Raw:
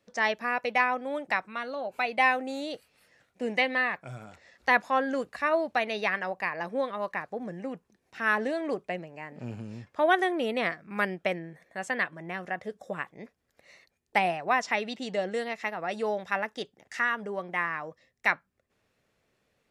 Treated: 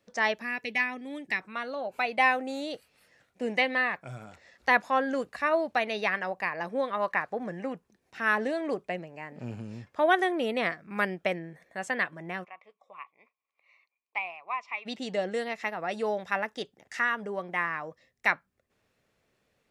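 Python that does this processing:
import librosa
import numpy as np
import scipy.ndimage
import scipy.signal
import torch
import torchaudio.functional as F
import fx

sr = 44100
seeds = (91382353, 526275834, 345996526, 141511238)

y = fx.spec_box(x, sr, start_s=0.42, length_s=0.99, low_hz=470.0, high_hz=1700.0, gain_db=-12)
y = fx.peak_eq(y, sr, hz=1500.0, db=6.0, octaves=2.5, at=(6.91, 7.73))
y = fx.double_bandpass(y, sr, hz=1600.0, octaves=1.1, at=(12.43, 14.85), fade=0.02)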